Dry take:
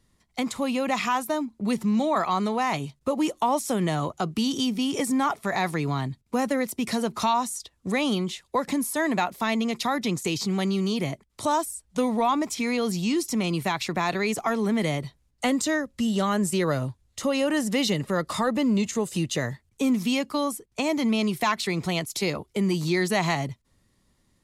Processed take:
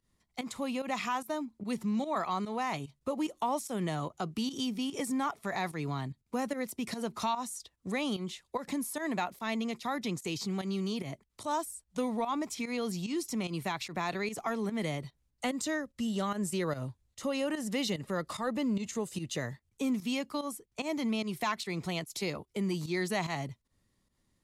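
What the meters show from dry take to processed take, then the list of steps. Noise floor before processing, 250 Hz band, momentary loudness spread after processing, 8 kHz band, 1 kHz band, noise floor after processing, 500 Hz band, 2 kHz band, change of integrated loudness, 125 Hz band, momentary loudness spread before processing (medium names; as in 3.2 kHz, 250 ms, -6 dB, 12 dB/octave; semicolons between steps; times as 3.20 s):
-68 dBFS, -8.5 dB, 5 LU, -8.5 dB, -8.5 dB, -77 dBFS, -8.5 dB, -8.5 dB, -8.5 dB, -8.5 dB, 5 LU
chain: volume shaper 147 bpm, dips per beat 1, -13 dB, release 115 ms; trim -8 dB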